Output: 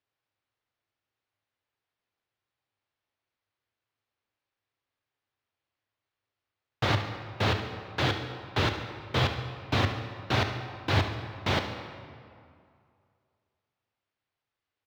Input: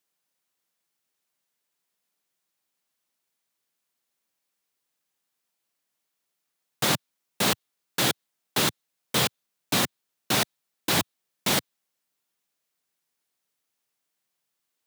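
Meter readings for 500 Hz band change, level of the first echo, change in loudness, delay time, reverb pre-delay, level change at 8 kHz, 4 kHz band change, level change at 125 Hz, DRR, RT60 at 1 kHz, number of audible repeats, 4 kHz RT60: -0.5 dB, -13.0 dB, -3.5 dB, 71 ms, 20 ms, -19.5 dB, -5.5 dB, +6.5 dB, 5.5 dB, 2.4 s, 2, 1.5 s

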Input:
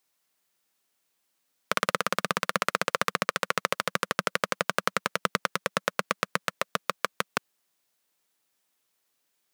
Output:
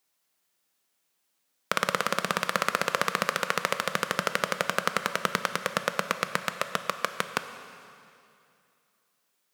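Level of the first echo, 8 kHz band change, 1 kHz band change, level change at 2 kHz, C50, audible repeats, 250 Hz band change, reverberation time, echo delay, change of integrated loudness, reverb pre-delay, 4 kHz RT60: no echo, +0.5 dB, +0.5 dB, +0.5 dB, 10.0 dB, no echo, +0.5 dB, 2.6 s, no echo, +0.5 dB, 7 ms, 2.4 s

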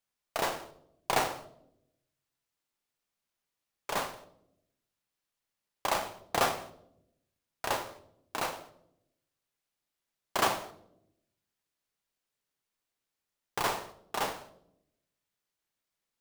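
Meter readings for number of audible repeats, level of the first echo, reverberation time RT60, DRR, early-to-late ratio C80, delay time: no echo, no echo, 0.80 s, 10.0 dB, 18.0 dB, no echo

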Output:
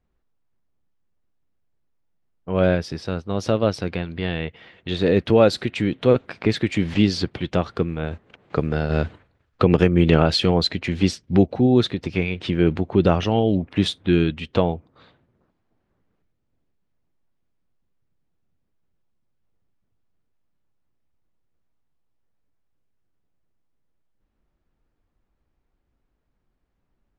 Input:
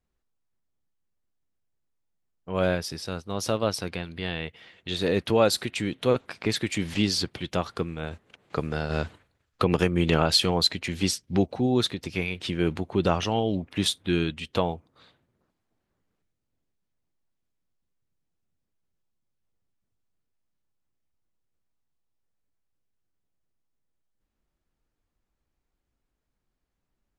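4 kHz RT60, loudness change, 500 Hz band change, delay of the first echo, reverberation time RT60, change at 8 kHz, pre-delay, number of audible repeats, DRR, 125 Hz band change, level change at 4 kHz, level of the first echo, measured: no reverb, +5.5 dB, +6.0 dB, no echo, no reverb, -6.5 dB, no reverb, no echo, no reverb, +7.5 dB, -0.5 dB, no echo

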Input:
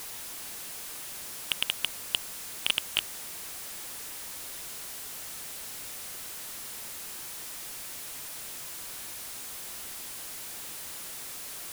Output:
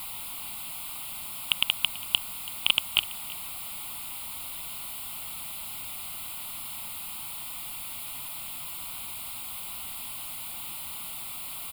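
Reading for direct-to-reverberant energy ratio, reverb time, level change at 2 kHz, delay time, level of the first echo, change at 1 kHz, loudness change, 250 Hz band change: no reverb, no reverb, +3.5 dB, 331 ms, -20.0 dB, +4.0 dB, +3.5 dB, +1.0 dB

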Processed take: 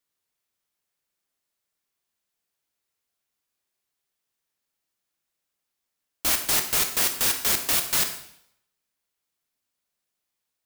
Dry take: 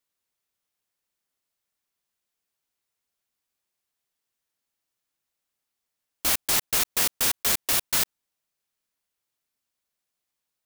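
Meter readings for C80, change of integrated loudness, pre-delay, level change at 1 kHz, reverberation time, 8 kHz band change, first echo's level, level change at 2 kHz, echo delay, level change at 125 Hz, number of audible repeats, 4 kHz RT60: 11.5 dB, +1.0 dB, 7 ms, +1.0 dB, 0.70 s, +1.0 dB, no echo, +1.0 dB, no echo, +1.0 dB, no echo, 0.70 s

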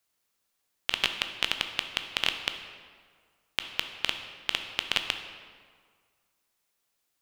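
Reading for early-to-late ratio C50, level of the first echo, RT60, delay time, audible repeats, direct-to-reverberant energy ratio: 8.0 dB, no echo, 1.8 s, no echo, no echo, 6.5 dB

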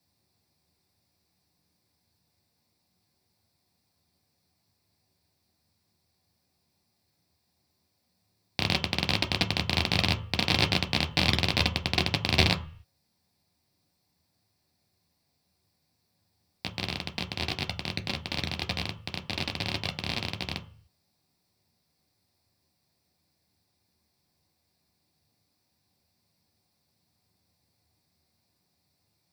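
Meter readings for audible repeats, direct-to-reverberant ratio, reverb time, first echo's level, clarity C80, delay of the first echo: no echo, 3.5 dB, 0.45 s, no echo, 19.0 dB, no echo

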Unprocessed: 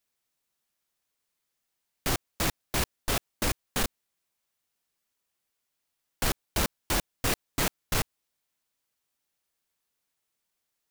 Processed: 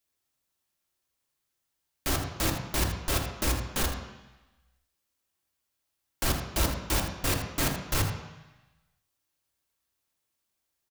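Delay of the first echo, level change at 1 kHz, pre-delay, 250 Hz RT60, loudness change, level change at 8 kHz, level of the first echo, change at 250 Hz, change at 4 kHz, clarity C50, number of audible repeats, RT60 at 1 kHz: 80 ms, 0.0 dB, 3 ms, 1.0 s, +1.0 dB, +0.5 dB, -10.0 dB, +1.5 dB, 0.0 dB, 5.0 dB, 1, 1.1 s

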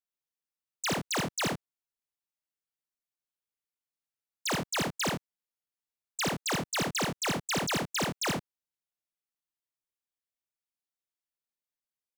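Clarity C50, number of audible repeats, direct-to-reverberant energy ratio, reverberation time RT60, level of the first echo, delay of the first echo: no reverb, 1, no reverb, no reverb, -5.0 dB, 56 ms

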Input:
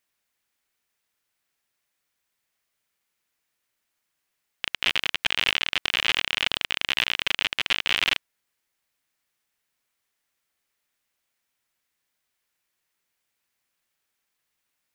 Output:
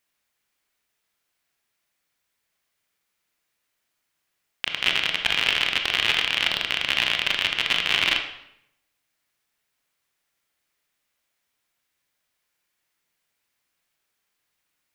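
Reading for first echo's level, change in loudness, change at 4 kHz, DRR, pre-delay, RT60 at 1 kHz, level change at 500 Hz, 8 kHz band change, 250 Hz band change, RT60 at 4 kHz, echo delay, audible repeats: no echo, +2.5 dB, +2.5 dB, 3.5 dB, 22 ms, 0.75 s, +3.0 dB, +1.5 dB, +2.5 dB, 0.60 s, no echo, no echo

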